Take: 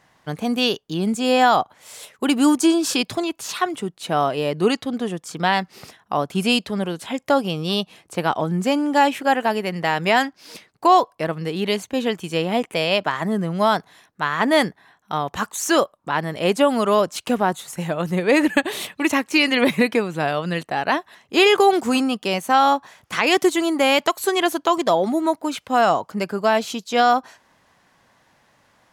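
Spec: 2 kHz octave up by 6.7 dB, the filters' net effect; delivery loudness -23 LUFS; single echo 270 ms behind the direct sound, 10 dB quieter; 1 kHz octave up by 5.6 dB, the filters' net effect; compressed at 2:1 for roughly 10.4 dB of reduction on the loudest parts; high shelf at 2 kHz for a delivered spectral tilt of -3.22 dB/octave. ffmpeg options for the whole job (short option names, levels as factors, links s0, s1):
-af "equalizer=f=1000:t=o:g=5.5,highshelf=f=2000:g=5.5,equalizer=f=2000:t=o:g=3.5,acompressor=threshold=0.0562:ratio=2,aecho=1:1:270:0.316,volume=1.12"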